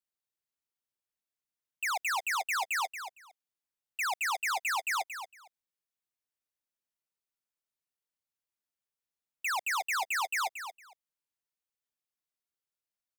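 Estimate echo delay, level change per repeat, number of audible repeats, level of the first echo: 229 ms, -15.5 dB, 2, -9.5 dB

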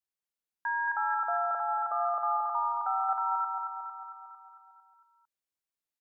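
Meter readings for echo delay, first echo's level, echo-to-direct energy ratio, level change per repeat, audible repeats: 226 ms, -5.0 dB, -3.0 dB, -4.5 dB, 7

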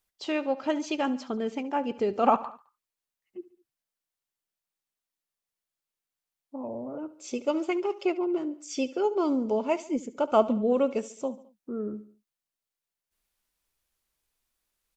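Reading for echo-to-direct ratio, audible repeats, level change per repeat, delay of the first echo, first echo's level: -16.0 dB, 3, -5.5 dB, 71 ms, -17.5 dB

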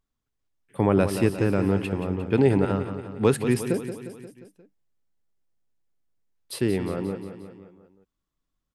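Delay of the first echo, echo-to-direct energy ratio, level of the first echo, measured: 177 ms, -8.0 dB, -10.0 dB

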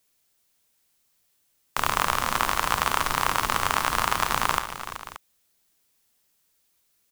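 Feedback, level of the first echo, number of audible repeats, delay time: no regular repeats, -12.0 dB, 4, 54 ms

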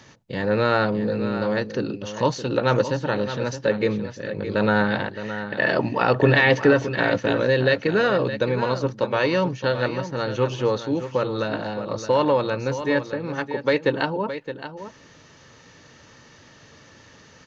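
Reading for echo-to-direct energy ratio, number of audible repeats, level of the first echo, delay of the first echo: -11.0 dB, 1, -11.0 dB, 617 ms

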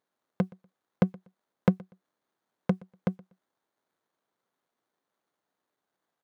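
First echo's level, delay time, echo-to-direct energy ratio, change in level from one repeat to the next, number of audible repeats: -24.0 dB, 121 ms, -24.0 dB, no regular repeats, 1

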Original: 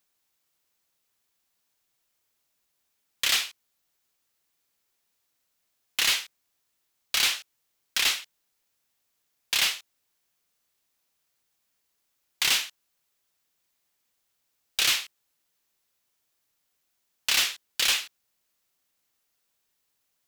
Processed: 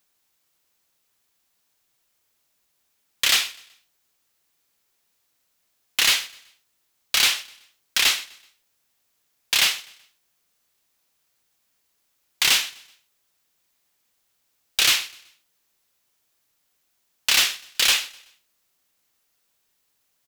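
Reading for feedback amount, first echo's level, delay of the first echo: 40%, -22.0 dB, 126 ms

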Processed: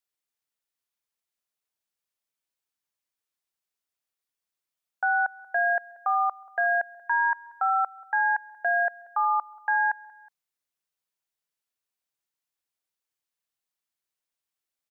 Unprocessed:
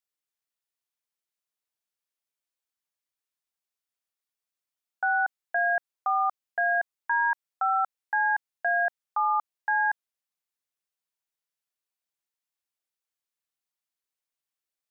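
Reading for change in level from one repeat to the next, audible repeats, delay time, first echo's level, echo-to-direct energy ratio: -5.5 dB, 2, 184 ms, -23.0 dB, -22.0 dB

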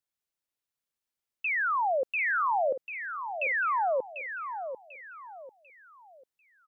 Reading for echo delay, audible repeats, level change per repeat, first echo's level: 744 ms, 3, -9.5 dB, -9.0 dB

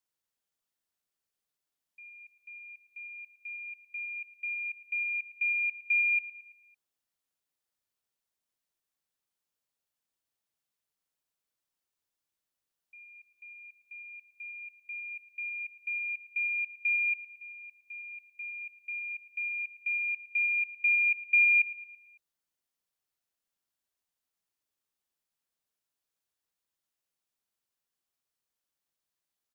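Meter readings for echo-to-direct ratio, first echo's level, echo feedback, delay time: -12.5 dB, -14.0 dB, 52%, 111 ms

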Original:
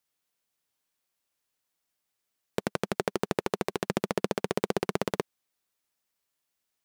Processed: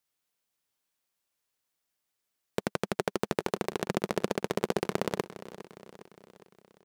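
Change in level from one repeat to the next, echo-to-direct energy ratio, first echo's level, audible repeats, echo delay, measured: -5.0 dB, -14.0 dB, -15.5 dB, 4, 408 ms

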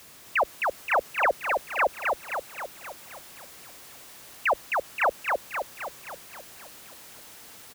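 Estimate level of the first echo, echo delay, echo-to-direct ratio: -3.0 dB, 263 ms, -1.5 dB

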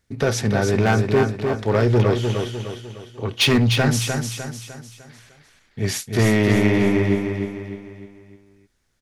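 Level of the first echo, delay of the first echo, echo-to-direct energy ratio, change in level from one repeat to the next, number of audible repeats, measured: -5.5 dB, 302 ms, -4.5 dB, -7.0 dB, 5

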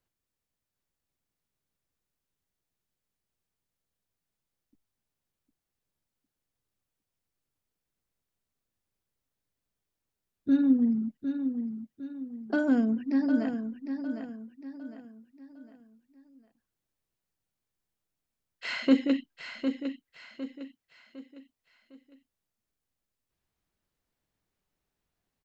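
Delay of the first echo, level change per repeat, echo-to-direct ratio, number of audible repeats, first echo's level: 756 ms, -8.0 dB, -7.5 dB, 4, -8.0 dB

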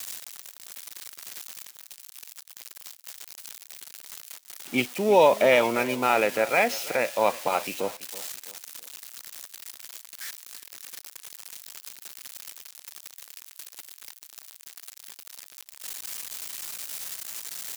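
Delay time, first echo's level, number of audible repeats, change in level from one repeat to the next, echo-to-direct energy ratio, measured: 332 ms, -18.0 dB, 2, -9.0 dB, -17.5 dB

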